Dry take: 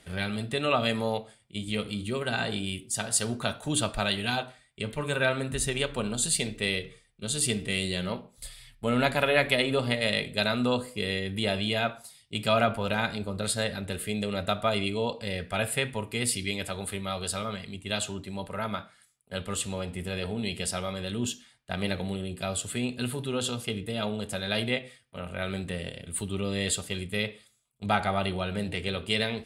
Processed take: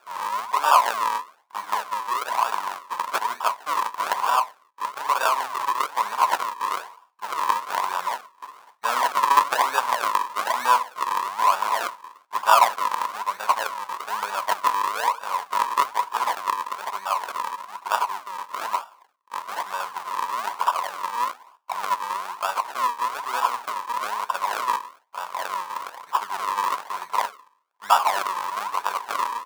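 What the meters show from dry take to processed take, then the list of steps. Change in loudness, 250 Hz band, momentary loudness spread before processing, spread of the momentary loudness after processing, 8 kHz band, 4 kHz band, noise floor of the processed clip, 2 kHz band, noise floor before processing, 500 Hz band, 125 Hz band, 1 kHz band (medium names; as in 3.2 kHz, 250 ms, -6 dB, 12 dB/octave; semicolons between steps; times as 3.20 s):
+5.0 dB, under -15 dB, 9 LU, 12 LU, -3.5 dB, -3.0 dB, -59 dBFS, +1.5 dB, -62 dBFS, -4.5 dB, under -25 dB, +15.0 dB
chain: decimation with a swept rate 42×, swing 100% 1.1 Hz; resonant high-pass 1 kHz, resonance Q 9; trim +3 dB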